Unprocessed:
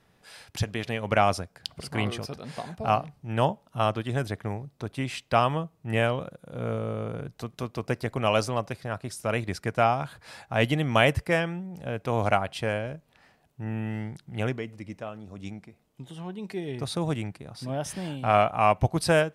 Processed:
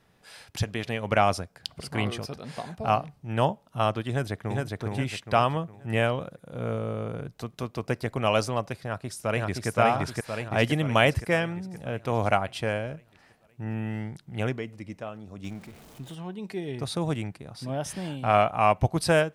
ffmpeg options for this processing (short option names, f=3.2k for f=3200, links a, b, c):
-filter_complex "[0:a]asplit=2[a][b];[b]afade=t=in:st=4.09:d=0.01,afade=t=out:st=4.79:d=0.01,aecho=0:1:410|820|1230|1640|2050:0.794328|0.317731|0.127093|0.050837|0.0203348[c];[a][c]amix=inputs=2:normalize=0,asplit=2[d][e];[e]afade=t=in:st=8.83:d=0.01,afade=t=out:st=9.68:d=0.01,aecho=0:1:520|1040|1560|2080|2600|3120|3640|4160:0.944061|0.519233|0.285578|0.157068|0.0863875|0.0475131|0.0261322|0.0143727[f];[d][f]amix=inputs=2:normalize=0,asettb=1/sr,asplit=3[g][h][i];[g]atrim=end=15.444[j];[h]atrim=start=15.44:end=16.15,asetpts=PTS-STARTPTS,afade=t=in:d=0.004:c=qsin,afade=t=out:st=0.706:d=0.004:c=qsin,aeval=exprs='val(0)+0.5*0.00562*sgn(val(0))':c=same[k];[i]atrim=start=16.146[l];[j][k]acrossfade=d=0.004:c1=hsin:c2=qsin[m];[m][l]acrossfade=d=0.004:c1=qsin:c2=hsin"